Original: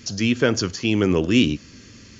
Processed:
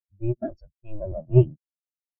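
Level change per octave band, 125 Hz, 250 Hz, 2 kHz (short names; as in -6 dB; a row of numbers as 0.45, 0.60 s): +3.0 dB, -11.5 dB, under -30 dB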